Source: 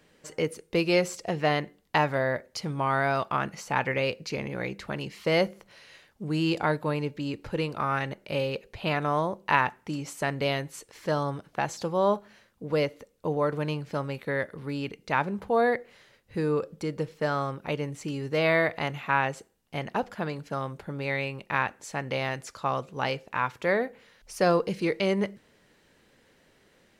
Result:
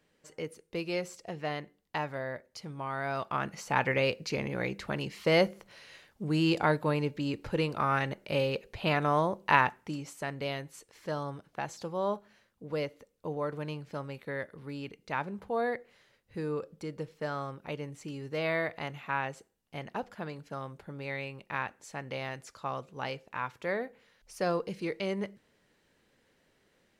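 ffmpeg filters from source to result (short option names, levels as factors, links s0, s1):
-af "volume=0.944,afade=t=in:st=2.96:d=0.9:silence=0.334965,afade=t=out:st=9.61:d=0.53:silence=0.446684"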